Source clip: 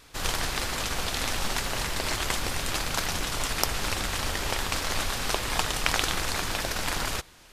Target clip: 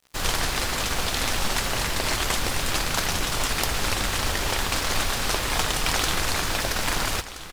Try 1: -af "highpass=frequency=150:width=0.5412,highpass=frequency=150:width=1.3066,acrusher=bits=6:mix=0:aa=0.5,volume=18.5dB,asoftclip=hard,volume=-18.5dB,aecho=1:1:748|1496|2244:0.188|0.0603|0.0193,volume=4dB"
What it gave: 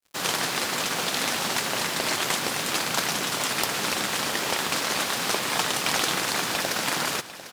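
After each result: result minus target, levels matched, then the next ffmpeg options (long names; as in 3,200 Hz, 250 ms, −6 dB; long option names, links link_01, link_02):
echo 576 ms early; 125 Hz band −8.5 dB
-af "highpass=frequency=150:width=0.5412,highpass=frequency=150:width=1.3066,acrusher=bits=6:mix=0:aa=0.5,volume=18.5dB,asoftclip=hard,volume=-18.5dB,aecho=1:1:1324|2648|3972:0.188|0.0603|0.0193,volume=4dB"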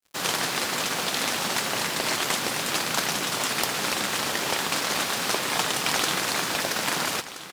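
125 Hz band −8.5 dB
-af "acrusher=bits=6:mix=0:aa=0.5,volume=18.5dB,asoftclip=hard,volume=-18.5dB,aecho=1:1:1324|2648|3972:0.188|0.0603|0.0193,volume=4dB"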